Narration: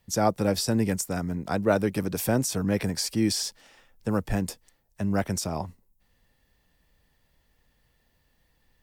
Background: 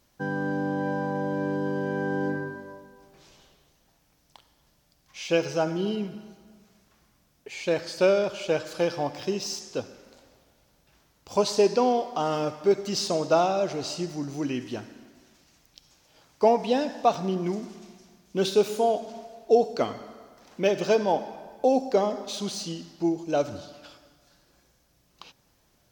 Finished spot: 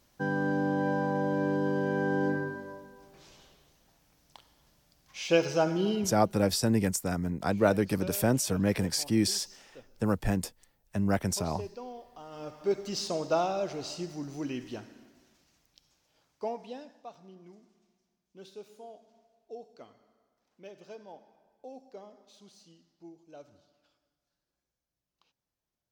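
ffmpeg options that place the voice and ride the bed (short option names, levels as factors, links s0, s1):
-filter_complex "[0:a]adelay=5950,volume=0.841[s0];[1:a]volume=5.01,afade=t=out:st=5.97:d=0.52:silence=0.1,afade=t=in:st=12.3:d=0.46:silence=0.188365,afade=t=out:st=15.02:d=2:silence=0.11885[s1];[s0][s1]amix=inputs=2:normalize=0"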